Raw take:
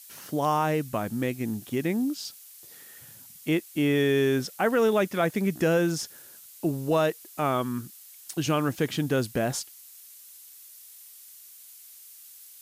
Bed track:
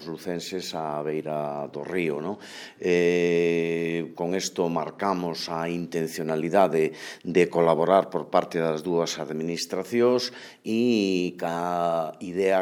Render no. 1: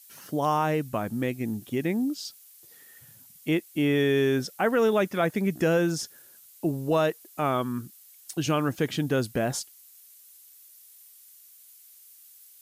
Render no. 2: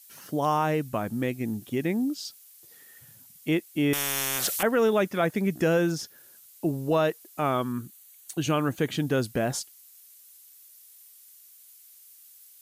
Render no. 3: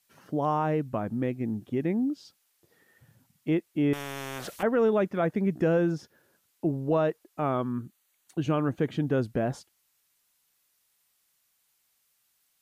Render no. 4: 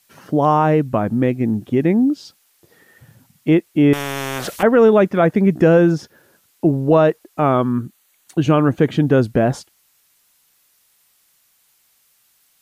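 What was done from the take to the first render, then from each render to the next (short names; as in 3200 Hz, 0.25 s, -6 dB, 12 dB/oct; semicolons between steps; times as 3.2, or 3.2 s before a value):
denoiser 6 dB, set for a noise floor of -49 dBFS
3.93–4.63 spectral compressor 10:1; 5.9–7.06 dynamic EQ 8200 Hz, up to -6 dB, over -49 dBFS, Q 1.3; 7.72–8.95 notch 5200 Hz, Q 5.9
LPF 1000 Hz 6 dB/oct
gain +12 dB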